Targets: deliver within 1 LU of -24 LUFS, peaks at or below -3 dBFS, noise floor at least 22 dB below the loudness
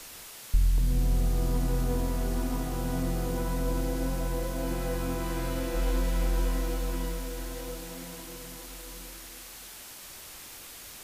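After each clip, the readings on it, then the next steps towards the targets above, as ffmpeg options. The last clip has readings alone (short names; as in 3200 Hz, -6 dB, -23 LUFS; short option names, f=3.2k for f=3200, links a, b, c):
noise floor -46 dBFS; noise floor target -54 dBFS; loudness -32.0 LUFS; peak -13.5 dBFS; loudness target -24.0 LUFS
-> -af "afftdn=nr=8:nf=-46"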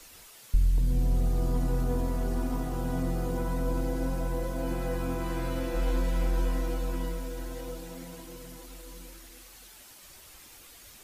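noise floor -52 dBFS; noise floor target -54 dBFS
-> -af "afftdn=nr=6:nf=-52"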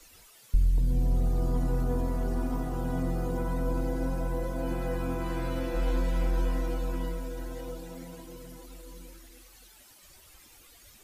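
noise floor -56 dBFS; loudness -31.5 LUFS; peak -14.0 dBFS; loudness target -24.0 LUFS
-> -af "volume=7.5dB"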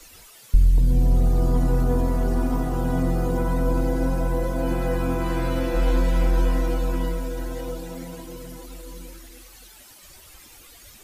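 loudness -24.0 LUFS; peak -6.5 dBFS; noise floor -48 dBFS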